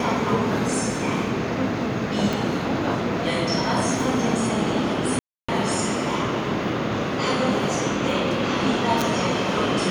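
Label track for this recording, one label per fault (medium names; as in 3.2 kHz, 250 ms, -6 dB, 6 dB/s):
2.330000	2.330000	pop
5.190000	5.490000	dropout 295 ms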